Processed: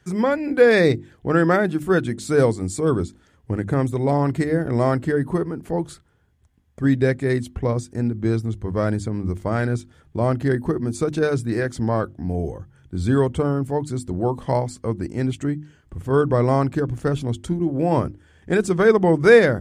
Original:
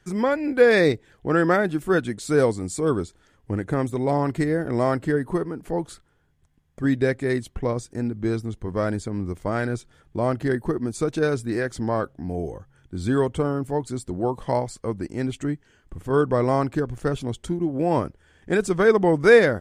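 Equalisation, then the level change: high-pass 71 Hz; bass shelf 130 Hz +11.5 dB; hum notches 50/100/150/200/250/300/350 Hz; +1.0 dB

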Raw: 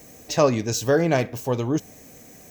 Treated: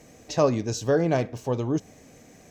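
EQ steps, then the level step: dynamic bell 2.2 kHz, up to -5 dB, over -39 dBFS, Q 0.89; distance through air 59 m; -2.0 dB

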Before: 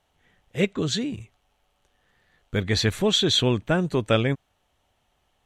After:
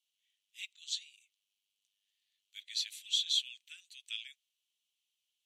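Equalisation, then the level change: steep high-pass 2.7 kHz 36 dB/octave; -8.5 dB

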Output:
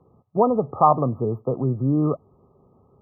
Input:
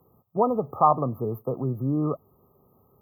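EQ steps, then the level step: low-pass 1.2 kHz 6 dB/octave; distance through air 58 m; +5.0 dB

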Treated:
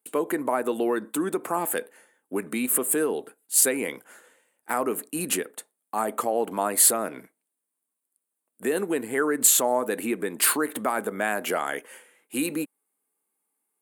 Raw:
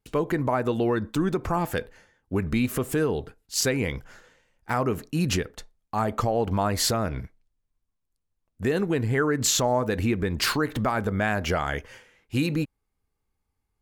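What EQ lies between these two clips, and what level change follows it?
high-pass 250 Hz 24 dB/octave; resonant high shelf 7.2 kHz +10 dB, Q 3; 0.0 dB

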